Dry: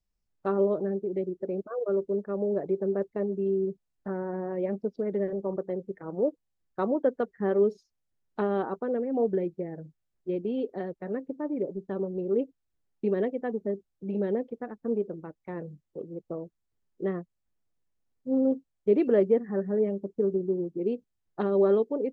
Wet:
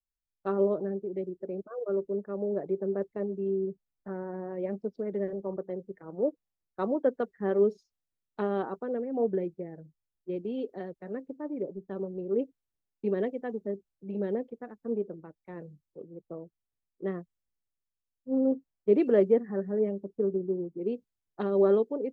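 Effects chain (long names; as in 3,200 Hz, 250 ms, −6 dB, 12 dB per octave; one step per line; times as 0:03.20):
multiband upward and downward expander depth 40%
level −2.5 dB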